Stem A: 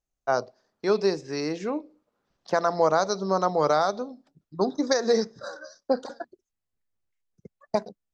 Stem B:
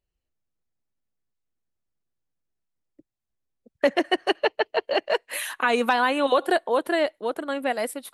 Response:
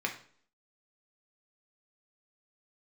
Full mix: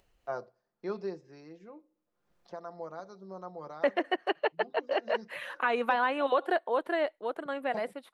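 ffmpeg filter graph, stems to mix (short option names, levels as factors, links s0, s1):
-filter_complex "[0:a]aecho=1:1:5.7:0.47,volume=0.562,afade=t=out:st=0.86:d=0.59:silence=0.354813,afade=t=in:st=4.97:d=0.63:silence=0.421697,asplit=2[s0][s1];[s1]volume=0.0668[s2];[1:a]lowshelf=f=270:g=-12,volume=0.668,asplit=2[s3][s4];[s4]apad=whole_len=359169[s5];[s0][s5]sidechaincompress=threshold=0.0447:ratio=8:attack=28:release=205[s6];[2:a]atrim=start_sample=2205[s7];[s2][s7]afir=irnorm=-1:irlink=0[s8];[s6][s3][s8]amix=inputs=3:normalize=0,acrossover=split=3900[s9][s10];[s10]acompressor=threshold=0.00282:ratio=4:attack=1:release=60[s11];[s9][s11]amix=inputs=2:normalize=0,highshelf=f=3400:g=-12,acompressor=mode=upward:threshold=0.00251:ratio=2.5"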